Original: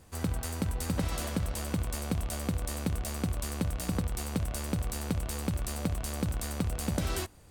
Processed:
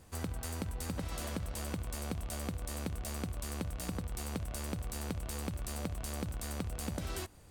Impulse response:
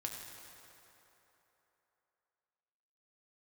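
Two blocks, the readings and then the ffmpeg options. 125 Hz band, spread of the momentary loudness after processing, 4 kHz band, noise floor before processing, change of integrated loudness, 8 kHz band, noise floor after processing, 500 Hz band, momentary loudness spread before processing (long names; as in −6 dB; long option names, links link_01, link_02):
−6.5 dB, 1 LU, −5.0 dB, −43 dBFS, −6.0 dB, −5.0 dB, −48 dBFS, −5.0 dB, 2 LU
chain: -af "acompressor=threshold=-33dB:ratio=6,volume=-1.5dB"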